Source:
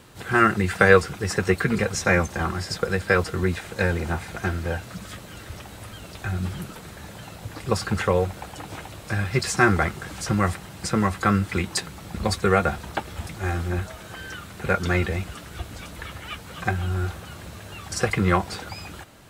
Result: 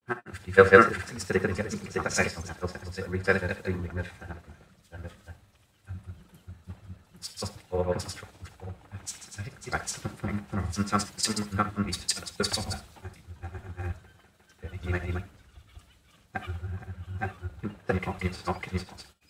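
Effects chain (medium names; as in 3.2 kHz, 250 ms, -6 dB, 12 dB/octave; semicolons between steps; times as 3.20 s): granulator, spray 554 ms, pitch spread up and down by 0 st; gated-style reverb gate 90 ms rising, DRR 11.5 dB; three bands expanded up and down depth 100%; trim -7.5 dB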